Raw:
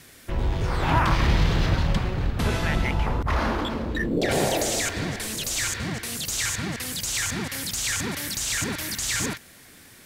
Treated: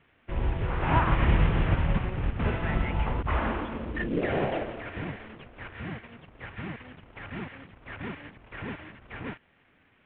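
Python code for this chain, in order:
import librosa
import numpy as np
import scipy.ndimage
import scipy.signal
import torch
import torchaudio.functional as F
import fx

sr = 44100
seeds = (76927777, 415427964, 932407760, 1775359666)

y = fx.cvsd(x, sr, bps=16000)
y = fx.upward_expand(y, sr, threshold_db=-43.0, expansion=1.5)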